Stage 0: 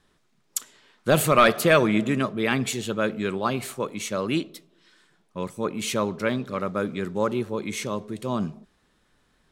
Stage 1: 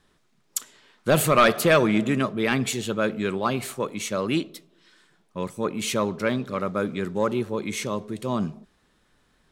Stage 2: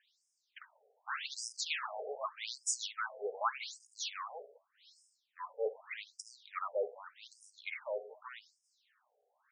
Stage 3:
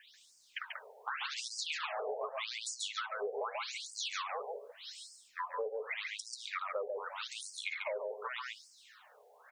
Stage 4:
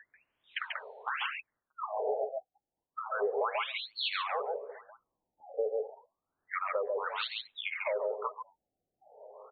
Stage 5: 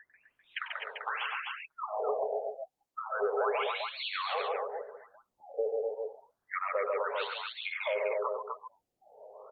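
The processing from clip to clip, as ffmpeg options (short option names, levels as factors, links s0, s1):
-af "acontrast=82,volume=0.501"
-af "highshelf=f=10000:g=10,asoftclip=type=tanh:threshold=0.0841,afftfilt=real='re*between(b*sr/1024,550*pow(7100/550,0.5+0.5*sin(2*PI*0.84*pts/sr))/1.41,550*pow(7100/550,0.5+0.5*sin(2*PI*0.84*pts/sr))*1.41)':imag='im*between(b*sr/1024,550*pow(7100/550,0.5+0.5*sin(2*PI*0.84*pts/sr))/1.41,550*pow(7100/550,0.5+0.5*sin(2*PI*0.84*pts/sr))*1.41)':win_size=1024:overlap=0.75,volume=0.794"
-filter_complex "[0:a]acrossover=split=440|3400[s0][s1][s2];[s0]acompressor=threshold=0.00708:ratio=4[s3];[s1]acompressor=threshold=0.00631:ratio=4[s4];[s2]acompressor=threshold=0.00158:ratio=4[s5];[s3][s4][s5]amix=inputs=3:normalize=0,aecho=1:1:138:0.596,acompressor=threshold=0.00224:ratio=3,volume=5.31"
-filter_complex "[0:a]alimiter=level_in=1.68:limit=0.0631:level=0:latency=1:release=283,volume=0.596,asplit=2[s0][s1];[s1]adelay=1341,volume=0.1,highshelf=f=4000:g=-30.2[s2];[s0][s2]amix=inputs=2:normalize=0,afftfilt=real='re*lt(b*sr/1024,800*pow(4500/800,0.5+0.5*sin(2*PI*0.31*pts/sr)))':imag='im*lt(b*sr/1024,800*pow(4500/800,0.5+0.5*sin(2*PI*0.31*pts/sr)))':win_size=1024:overlap=0.75,volume=2.24"
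-filter_complex "[0:a]aecho=1:1:96.21|253.6:0.282|0.631,acrossover=split=3300[s0][s1];[s1]acompressor=threshold=0.00631:ratio=4:attack=1:release=60[s2];[s0][s2]amix=inputs=2:normalize=0" -ar 48000 -c:a libopus -b:a 48k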